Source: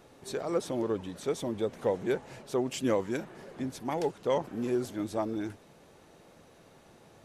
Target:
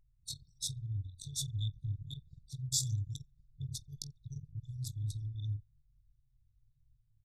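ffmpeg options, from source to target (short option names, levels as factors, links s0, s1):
-af "afftfilt=real='re*(1-between(b*sr/4096,140,3400))':imag='im*(1-between(b*sr/4096,140,3400))':win_size=4096:overlap=0.75,dynaudnorm=f=160:g=5:m=1.41,aecho=1:1:20|48|87.2|142.1|218.9:0.631|0.398|0.251|0.158|0.1,anlmdn=1,volume=1.68"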